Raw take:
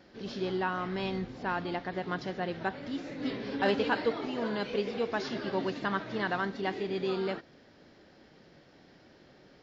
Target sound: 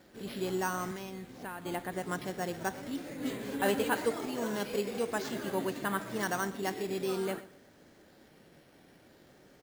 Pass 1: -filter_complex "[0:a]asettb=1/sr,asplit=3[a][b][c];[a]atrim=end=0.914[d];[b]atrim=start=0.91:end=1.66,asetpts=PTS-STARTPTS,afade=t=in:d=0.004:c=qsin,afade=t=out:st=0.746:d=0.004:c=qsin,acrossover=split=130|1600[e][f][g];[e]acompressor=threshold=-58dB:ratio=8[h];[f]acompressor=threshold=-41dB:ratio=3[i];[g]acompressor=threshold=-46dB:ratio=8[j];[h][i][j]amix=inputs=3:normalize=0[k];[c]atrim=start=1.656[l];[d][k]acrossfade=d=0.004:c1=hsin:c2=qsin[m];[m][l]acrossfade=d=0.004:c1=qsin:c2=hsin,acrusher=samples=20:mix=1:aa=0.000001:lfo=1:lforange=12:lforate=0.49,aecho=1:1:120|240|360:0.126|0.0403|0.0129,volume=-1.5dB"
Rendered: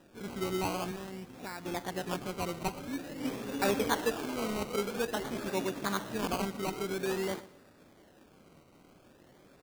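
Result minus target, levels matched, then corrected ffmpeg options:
decimation with a swept rate: distortion +12 dB
-filter_complex "[0:a]asettb=1/sr,asplit=3[a][b][c];[a]atrim=end=0.914[d];[b]atrim=start=0.91:end=1.66,asetpts=PTS-STARTPTS,afade=t=in:d=0.004:c=qsin,afade=t=out:st=0.746:d=0.004:c=qsin,acrossover=split=130|1600[e][f][g];[e]acompressor=threshold=-58dB:ratio=8[h];[f]acompressor=threshold=-41dB:ratio=3[i];[g]acompressor=threshold=-46dB:ratio=8[j];[h][i][j]amix=inputs=3:normalize=0[k];[c]atrim=start=1.656[l];[d][k]acrossfade=d=0.004:c1=hsin:c2=qsin[m];[m][l]acrossfade=d=0.004:c1=qsin:c2=hsin,acrusher=samples=5:mix=1:aa=0.000001:lfo=1:lforange=3:lforate=0.49,aecho=1:1:120|240|360:0.126|0.0403|0.0129,volume=-1.5dB"

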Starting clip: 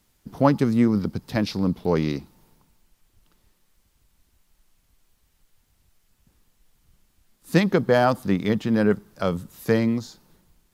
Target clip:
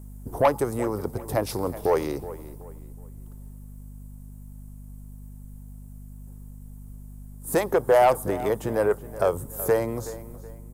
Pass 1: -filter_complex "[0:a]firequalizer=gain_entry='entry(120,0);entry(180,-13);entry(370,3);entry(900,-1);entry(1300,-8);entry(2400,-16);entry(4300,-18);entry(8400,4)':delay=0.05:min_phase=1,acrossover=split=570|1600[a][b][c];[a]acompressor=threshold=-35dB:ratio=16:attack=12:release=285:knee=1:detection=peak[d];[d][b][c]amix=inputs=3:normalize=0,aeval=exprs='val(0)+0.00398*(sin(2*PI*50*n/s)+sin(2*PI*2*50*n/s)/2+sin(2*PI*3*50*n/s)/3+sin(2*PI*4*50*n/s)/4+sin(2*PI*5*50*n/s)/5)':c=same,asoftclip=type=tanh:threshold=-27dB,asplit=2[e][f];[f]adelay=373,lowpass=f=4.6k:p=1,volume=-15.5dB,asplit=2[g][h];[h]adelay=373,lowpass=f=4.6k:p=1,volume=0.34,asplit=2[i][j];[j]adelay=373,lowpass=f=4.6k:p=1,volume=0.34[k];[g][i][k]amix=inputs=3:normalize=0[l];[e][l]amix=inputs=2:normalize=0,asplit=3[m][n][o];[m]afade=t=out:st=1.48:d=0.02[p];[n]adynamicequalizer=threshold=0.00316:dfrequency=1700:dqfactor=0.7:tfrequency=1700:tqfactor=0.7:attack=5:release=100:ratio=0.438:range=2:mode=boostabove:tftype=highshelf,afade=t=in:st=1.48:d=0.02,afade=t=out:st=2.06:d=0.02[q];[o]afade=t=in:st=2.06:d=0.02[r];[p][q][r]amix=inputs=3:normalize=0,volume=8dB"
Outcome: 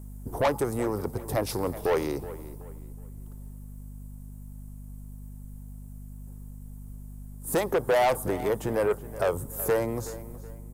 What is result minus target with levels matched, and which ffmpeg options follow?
soft clip: distortion +7 dB
-filter_complex "[0:a]firequalizer=gain_entry='entry(120,0);entry(180,-13);entry(370,3);entry(900,-1);entry(1300,-8);entry(2400,-16);entry(4300,-18);entry(8400,4)':delay=0.05:min_phase=1,acrossover=split=570|1600[a][b][c];[a]acompressor=threshold=-35dB:ratio=16:attack=12:release=285:knee=1:detection=peak[d];[d][b][c]amix=inputs=3:normalize=0,aeval=exprs='val(0)+0.00398*(sin(2*PI*50*n/s)+sin(2*PI*2*50*n/s)/2+sin(2*PI*3*50*n/s)/3+sin(2*PI*4*50*n/s)/4+sin(2*PI*5*50*n/s)/5)':c=same,asoftclip=type=tanh:threshold=-19dB,asplit=2[e][f];[f]adelay=373,lowpass=f=4.6k:p=1,volume=-15.5dB,asplit=2[g][h];[h]adelay=373,lowpass=f=4.6k:p=1,volume=0.34,asplit=2[i][j];[j]adelay=373,lowpass=f=4.6k:p=1,volume=0.34[k];[g][i][k]amix=inputs=3:normalize=0[l];[e][l]amix=inputs=2:normalize=0,asplit=3[m][n][o];[m]afade=t=out:st=1.48:d=0.02[p];[n]adynamicequalizer=threshold=0.00316:dfrequency=1700:dqfactor=0.7:tfrequency=1700:tqfactor=0.7:attack=5:release=100:ratio=0.438:range=2:mode=boostabove:tftype=highshelf,afade=t=in:st=1.48:d=0.02,afade=t=out:st=2.06:d=0.02[q];[o]afade=t=in:st=2.06:d=0.02[r];[p][q][r]amix=inputs=3:normalize=0,volume=8dB"

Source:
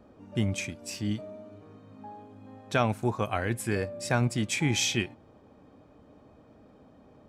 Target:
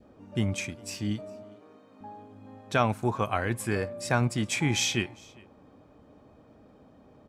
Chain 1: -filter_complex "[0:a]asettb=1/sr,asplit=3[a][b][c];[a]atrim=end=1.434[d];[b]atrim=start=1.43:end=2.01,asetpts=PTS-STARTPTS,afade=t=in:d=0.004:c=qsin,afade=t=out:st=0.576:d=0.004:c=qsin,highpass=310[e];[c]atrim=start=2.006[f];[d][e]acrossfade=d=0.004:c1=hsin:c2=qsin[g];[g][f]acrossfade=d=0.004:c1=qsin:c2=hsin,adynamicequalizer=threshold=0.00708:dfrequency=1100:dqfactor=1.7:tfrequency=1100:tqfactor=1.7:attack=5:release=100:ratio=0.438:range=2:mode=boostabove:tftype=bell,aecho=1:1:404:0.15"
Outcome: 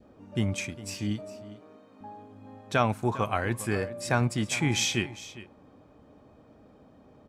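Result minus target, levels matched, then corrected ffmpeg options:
echo-to-direct +9 dB
-filter_complex "[0:a]asettb=1/sr,asplit=3[a][b][c];[a]atrim=end=1.434[d];[b]atrim=start=1.43:end=2.01,asetpts=PTS-STARTPTS,afade=t=in:d=0.004:c=qsin,afade=t=out:st=0.576:d=0.004:c=qsin,highpass=310[e];[c]atrim=start=2.006[f];[d][e]acrossfade=d=0.004:c1=hsin:c2=qsin[g];[g][f]acrossfade=d=0.004:c1=qsin:c2=hsin,adynamicequalizer=threshold=0.00708:dfrequency=1100:dqfactor=1.7:tfrequency=1100:tqfactor=1.7:attack=5:release=100:ratio=0.438:range=2:mode=boostabove:tftype=bell,aecho=1:1:404:0.0531"

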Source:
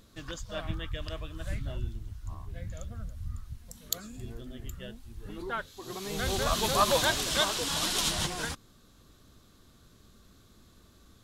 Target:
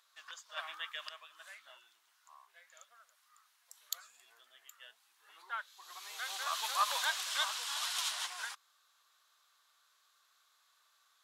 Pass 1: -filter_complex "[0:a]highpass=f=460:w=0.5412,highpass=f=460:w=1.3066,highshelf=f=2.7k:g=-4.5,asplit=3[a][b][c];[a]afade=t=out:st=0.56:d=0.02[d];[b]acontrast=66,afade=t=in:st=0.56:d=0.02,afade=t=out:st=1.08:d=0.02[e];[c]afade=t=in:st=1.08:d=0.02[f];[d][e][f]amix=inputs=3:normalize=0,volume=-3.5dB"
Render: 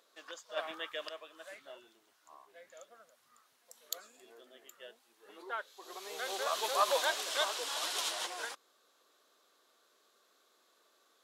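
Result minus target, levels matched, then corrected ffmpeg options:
500 Hz band +14.5 dB
-filter_complex "[0:a]highpass=f=940:w=0.5412,highpass=f=940:w=1.3066,highshelf=f=2.7k:g=-4.5,asplit=3[a][b][c];[a]afade=t=out:st=0.56:d=0.02[d];[b]acontrast=66,afade=t=in:st=0.56:d=0.02,afade=t=out:st=1.08:d=0.02[e];[c]afade=t=in:st=1.08:d=0.02[f];[d][e][f]amix=inputs=3:normalize=0,volume=-3.5dB"

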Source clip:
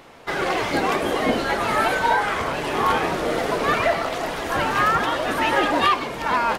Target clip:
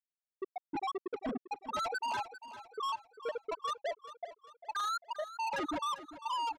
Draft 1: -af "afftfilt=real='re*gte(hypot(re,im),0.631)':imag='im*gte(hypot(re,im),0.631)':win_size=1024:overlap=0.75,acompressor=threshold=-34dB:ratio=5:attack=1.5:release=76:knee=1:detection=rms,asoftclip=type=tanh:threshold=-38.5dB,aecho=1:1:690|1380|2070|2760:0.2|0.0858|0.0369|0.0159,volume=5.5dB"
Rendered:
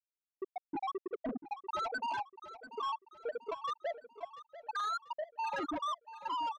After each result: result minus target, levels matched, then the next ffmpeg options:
echo 0.293 s late; compressor: peak gain reduction +5 dB
-af "afftfilt=real='re*gte(hypot(re,im),0.631)':imag='im*gte(hypot(re,im),0.631)':win_size=1024:overlap=0.75,acompressor=threshold=-34dB:ratio=5:attack=1.5:release=76:knee=1:detection=rms,asoftclip=type=tanh:threshold=-38.5dB,aecho=1:1:397|794|1191|1588:0.2|0.0858|0.0369|0.0159,volume=5.5dB"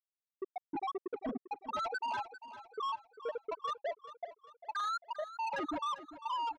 compressor: peak gain reduction +5 dB
-af "afftfilt=real='re*gte(hypot(re,im),0.631)':imag='im*gte(hypot(re,im),0.631)':win_size=1024:overlap=0.75,acompressor=threshold=-28dB:ratio=5:attack=1.5:release=76:knee=1:detection=rms,asoftclip=type=tanh:threshold=-38.5dB,aecho=1:1:397|794|1191|1588:0.2|0.0858|0.0369|0.0159,volume=5.5dB"

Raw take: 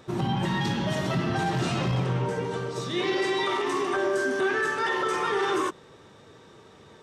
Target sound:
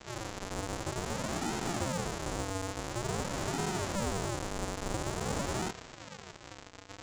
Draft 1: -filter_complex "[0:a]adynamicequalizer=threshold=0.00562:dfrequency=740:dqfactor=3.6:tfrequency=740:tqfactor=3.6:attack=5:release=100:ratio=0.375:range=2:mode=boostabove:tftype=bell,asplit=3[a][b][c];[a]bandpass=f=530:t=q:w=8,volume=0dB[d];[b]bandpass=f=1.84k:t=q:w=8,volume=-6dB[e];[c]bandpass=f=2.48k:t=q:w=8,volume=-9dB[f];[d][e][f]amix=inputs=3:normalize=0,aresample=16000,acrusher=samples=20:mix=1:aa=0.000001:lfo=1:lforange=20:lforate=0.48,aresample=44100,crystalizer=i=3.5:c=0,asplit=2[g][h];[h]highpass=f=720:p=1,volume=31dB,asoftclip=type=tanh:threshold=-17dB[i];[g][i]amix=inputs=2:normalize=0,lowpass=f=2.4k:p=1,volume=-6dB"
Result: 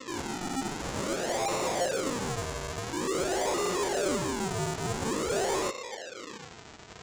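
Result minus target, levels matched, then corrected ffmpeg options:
decimation with a swept rate: distortion -36 dB
-filter_complex "[0:a]adynamicequalizer=threshold=0.00562:dfrequency=740:dqfactor=3.6:tfrequency=740:tqfactor=3.6:attack=5:release=100:ratio=0.375:range=2:mode=boostabove:tftype=bell,asplit=3[a][b][c];[a]bandpass=f=530:t=q:w=8,volume=0dB[d];[b]bandpass=f=1.84k:t=q:w=8,volume=-6dB[e];[c]bandpass=f=2.48k:t=q:w=8,volume=-9dB[f];[d][e][f]amix=inputs=3:normalize=0,aresample=16000,acrusher=samples=56:mix=1:aa=0.000001:lfo=1:lforange=56:lforate=0.48,aresample=44100,crystalizer=i=3.5:c=0,asplit=2[g][h];[h]highpass=f=720:p=1,volume=31dB,asoftclip=type=tanh:threshold=-17dB[i];[g][i]amix=inputs=2:normalize=0,lowpass=f=2.4k:p=1,volume=-6dB"

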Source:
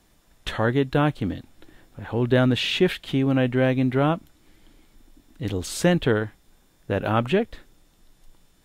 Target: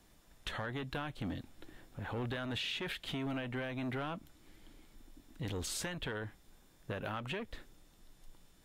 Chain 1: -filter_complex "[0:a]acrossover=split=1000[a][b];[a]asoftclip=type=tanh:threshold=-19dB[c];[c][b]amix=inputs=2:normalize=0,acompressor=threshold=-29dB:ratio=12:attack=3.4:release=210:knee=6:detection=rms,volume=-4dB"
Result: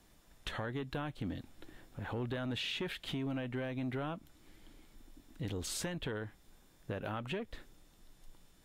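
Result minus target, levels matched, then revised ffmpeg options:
soft clip: distortion -6 dB
-filter_complex "[0:a]acrossover=split=1000[a][b];[a]asoftclip=type=tanh:threshold=-27dB[c];[c][b]amix=inputs=2:normalize=0,acompressor=threshold=-29dB:ratio=12:attack=3.4:release=210:knee=6:detection=rms,volume=-4dB"

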